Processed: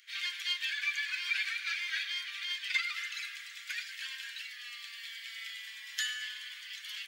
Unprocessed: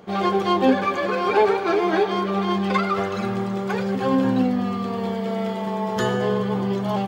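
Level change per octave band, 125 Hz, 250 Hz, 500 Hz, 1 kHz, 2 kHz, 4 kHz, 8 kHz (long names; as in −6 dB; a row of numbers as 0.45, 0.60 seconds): below −40 dB, below −40 dB, below −40 dB, −31.5 dB, −3.5 dB, 0.0 dB, can't be measured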